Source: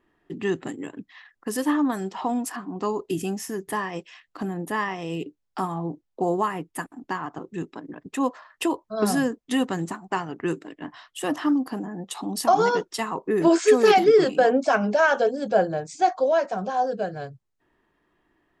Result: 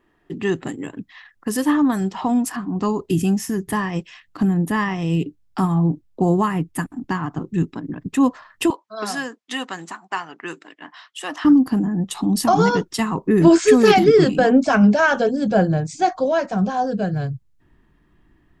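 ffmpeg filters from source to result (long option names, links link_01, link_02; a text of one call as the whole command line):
ffmpeg -i in.wav -filter_complex "[0:a]asettb=1/sr,asplit=3[link_01][link_02][link_03];[link_01]atrim=end=8.704[link_04];[link_02]atrim=start=8.7:end=11.45,asetpts=PTS-STARTPTS,afade=type=in:duration=0.004:curve=qsin,afade=type=out:start_time=2.746:duration=0.004:curve=qsin,highpass=750,lowpass=6900[link_05];[link_03]atrim=start=11.446[link_06];[link_04][link_05]acrossfade=duration=0.004:curve1=hsin:curve2=qsin[link_07];[link_07][link_06]acrossfade=duration=0.004:curve1=qsin:curve2=hsin,asubboost=boost=6:cutoff=200,volume=4.5dB" out.wav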